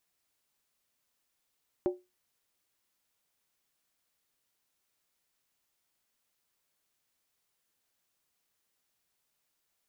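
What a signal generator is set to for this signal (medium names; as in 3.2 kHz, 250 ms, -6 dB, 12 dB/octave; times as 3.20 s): skin hit, lowest mode 362 Hz, decay 0.23 s, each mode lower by 8.5 dB, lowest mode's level -22 dB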